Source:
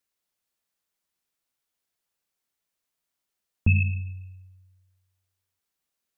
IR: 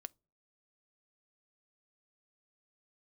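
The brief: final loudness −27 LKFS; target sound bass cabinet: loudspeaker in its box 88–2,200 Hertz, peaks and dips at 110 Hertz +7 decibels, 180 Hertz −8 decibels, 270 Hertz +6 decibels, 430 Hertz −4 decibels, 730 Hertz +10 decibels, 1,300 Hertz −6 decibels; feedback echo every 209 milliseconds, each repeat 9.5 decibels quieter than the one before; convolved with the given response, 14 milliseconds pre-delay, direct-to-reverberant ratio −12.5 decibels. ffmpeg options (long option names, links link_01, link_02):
-filter_complex "[0:a]aecho=1:1:209|418|627|836:0.335|0.111|0.0365|0.012,asplit=2[link_01][link_02];[1:a]atrim=start_sample=2205,adelay=14[link_03];[link_02][link_03]afir=irnorm=-1:irlink=0,volume=17.5dB[link_04];[link_01][link_04]amix=inputs=2:normalize=0,highpass=frequency=88:width=0.5412,highpass=frequency=88:width=1.3066,equalizer=frequency=110:width_type=q:width=4:gain=7,equalizer=frequency=180:width_type=q:width=4:gain=-8,equalizer=frequency=270:width_type=q:width=4:gain=6,equalizer=frequency=430:width_type=q:width=4:gain=-4,equalizer=frequency=730:width_type=q:width=4:gain=10,equalizer=frequency=1300:width_type=q:width=4:gain=-6,lowpass=frequency=2200:width=0.5412,lowpass=frequency=2200:width=1.3066,volume=-11dB"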